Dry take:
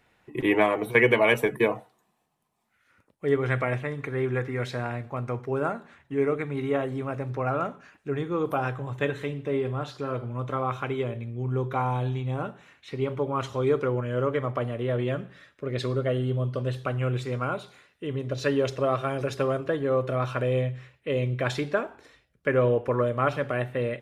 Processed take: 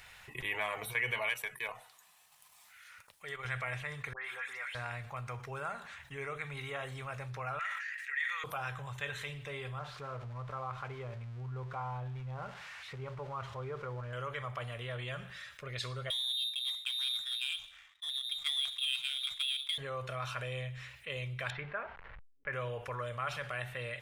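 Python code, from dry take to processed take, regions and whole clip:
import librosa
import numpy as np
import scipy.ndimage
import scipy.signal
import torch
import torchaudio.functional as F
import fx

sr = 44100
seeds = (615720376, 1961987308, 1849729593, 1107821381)

y = fx.chain(x, sr, fx.low_shelf(hz=450.0, db=-10.5),
    fx.transient(attack_db=-4, sustain_db=-10), at=(1.29, 3.45))
y = fx.chain(y, sr, fx.highpass(hz=830.0, slope=12),
    fx.dispersion(late='highs', ms=118.0, hz=2300.0), at=(4.13, 4.75))
y = fx.chain(y, sr, fx.highpass_res(hz=1900.0, q=15.0),
    fx.sustainer(db_per_s=55.0), at=(7.59, 8.44))
y = fx.chain(y, sr, fx.crossing_spikes(level_db=-25.0),
    fx.lowpass(hz=1100.0, slope=12), at=(9.79, 14.13))
y = fx.chain(y, sr, fx.freq_invert(carrier_hz=3800),
    fx.power_curve(exponent=1.4),
    fx.low_shelf(hz=460.0, db=-5.5), at=(16.1, 19.78))
y = fx.chain(y, sr, fx.delta_hold(step_db=-46.0),
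    fx.lowpass(hz=2200.0, slope=24), at=(21.5, 22.53))
y = fx.tone_stack(y, sr, knobs='10-0-10')
y = fx.env_flatten(y, sr, amount_pct=50)
y = F.gain(torch.from_numpy(y), -7.5).numpy()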